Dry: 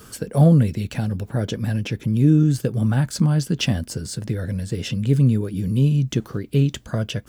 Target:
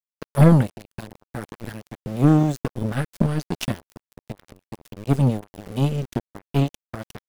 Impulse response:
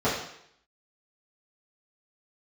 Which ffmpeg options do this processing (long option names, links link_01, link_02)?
-af "aeval=exprs='val(0)*gte(abs(val(0)),0.0841)':channel_layout=same,aeval=exprs='0.631*(cos(1*acos(clip(val(0)/0.631,-1,1)))-cos(1*PI/2))+0.0112*(cos(2*acos(clip(val(0)/0.631,-1,1)))-cos(2*PI/2))+0.00631*(cos(3*acos(clip(val(0)/0.631,-1,1)))-cos(3*PI/2))+0.0794*(cos(4*acos(clip(val(0)/0.631,-1,1)))-cos(4*PI/2))+0.0891*(cos(7*acos(clip(val(0)/0.631,-1,1)))-cos(7*PI/2))':channel_layout=same"